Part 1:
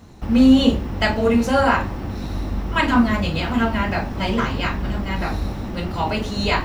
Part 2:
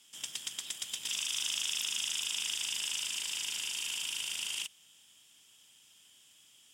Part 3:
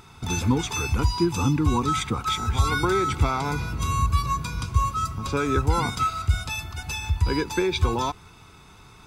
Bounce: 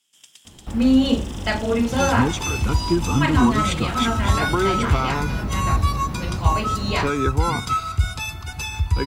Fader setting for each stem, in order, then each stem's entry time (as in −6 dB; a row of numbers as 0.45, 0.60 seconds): −3.5, −8.5, +2.0 decibels; 0.45, 0.00, 1.70 seconds